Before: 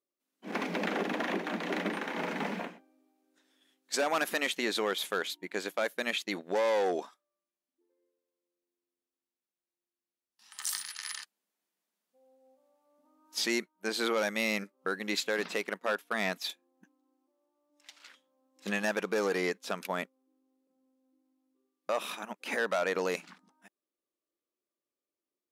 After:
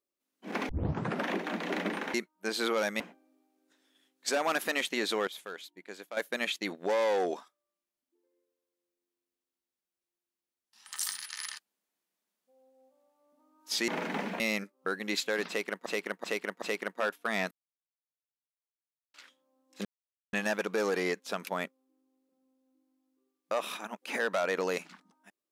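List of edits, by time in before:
0.69 s: tape start 0.59 s
2.14–2.66 s: swap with 13.54–14.40 s
4.93–5.83 s: gain -10 dB
15.48–15.86 s: loop, 4 plays
16.37–18.00 s: mute
18.71 s: insert silence 0.48 s

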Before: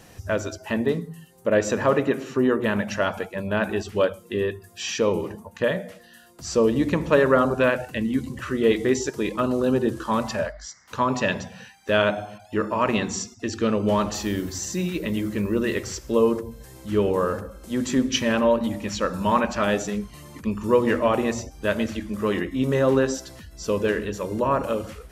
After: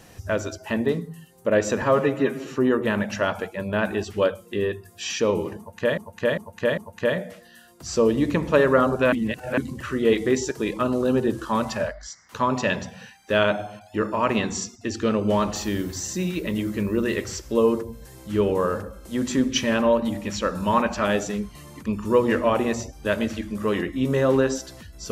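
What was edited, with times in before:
1.82–2.25 s: stretch 1.5×
5.36–5.76 s: loop, 4 plays
7.71–8.16 s: reverse

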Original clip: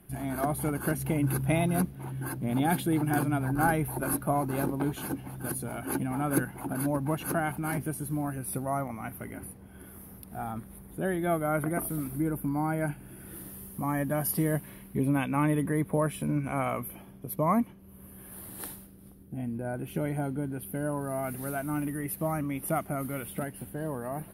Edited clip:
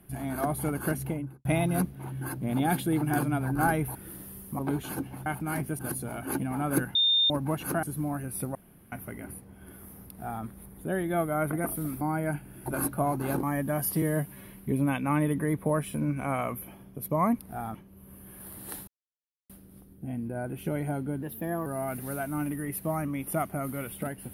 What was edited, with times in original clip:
0.92–1.45 s: studio fade out
3.95–4.72 s: swap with 13.21–13.85 s
6.55–6.90 s: bleep 3.63 kHz -20 dBFS
7.43–7.96 s: move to 5.39 s
8.68–9.05 s: room tone
10.21–10.57 s: copy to 17.66 s
12.14–12.56 s: delete
14.44–14.73 s: stretch 1.5×
18.79 s: insert silence 0.62 s
20.52–21.02 s: speed 115%

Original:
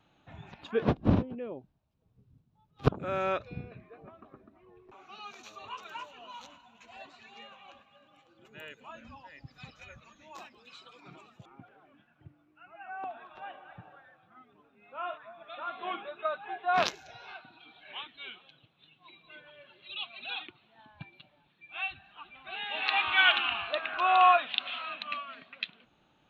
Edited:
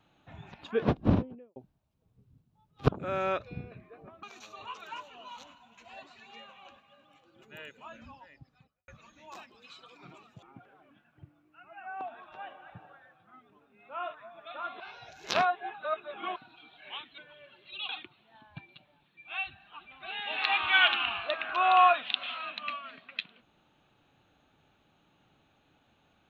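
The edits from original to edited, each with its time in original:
1.10–1.56 s: studio fade out
4.23–5.26 s: delete
9.03–9.91 s: studio fade out
15.83–17.39 s: reverse
18.21–19.35 s: delete
20.06–20.33 s: delete

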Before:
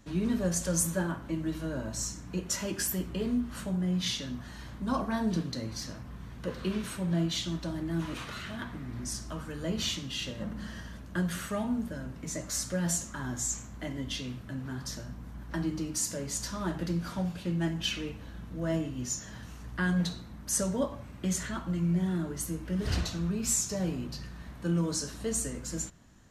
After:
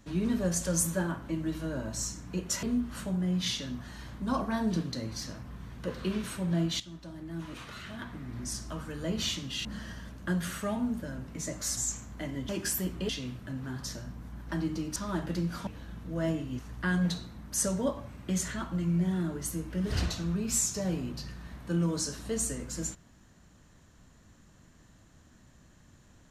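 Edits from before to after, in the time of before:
2.63–3.23 s: move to 14.11 s
7.40–9.17 s: fade in, from -13.5 dB
10.25–10.53 s: delete
12.65–13.39 s: delete
15.98–16.48 s: delete
17.19–18.13 s: delete
19.05–19.54 s: delete

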